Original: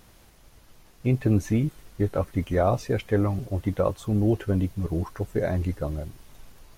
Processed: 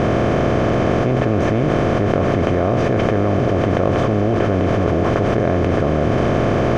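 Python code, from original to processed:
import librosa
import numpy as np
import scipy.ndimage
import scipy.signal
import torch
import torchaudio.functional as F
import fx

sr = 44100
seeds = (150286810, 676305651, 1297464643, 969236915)

y = fx.bin_compress(x, sr, power=0.2)
y = scipy.signal.sosfilt(scipy.signal.butter(2, 3700.0, 'lowpass', fs=sr, output='sos'), y)
y = fx.env_flatten(y, sr, amount_pct=100)
y = F.gain(torch.from_numpy(y), -3.5).numpy()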